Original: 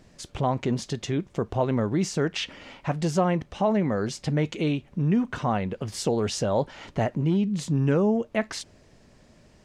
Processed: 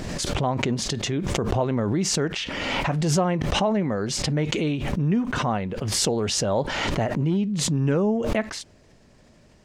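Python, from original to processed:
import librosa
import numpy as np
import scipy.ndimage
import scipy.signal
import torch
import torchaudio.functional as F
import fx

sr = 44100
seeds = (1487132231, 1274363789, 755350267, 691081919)

y = fx.pre_swell(x, sr, db_per_s=24.0)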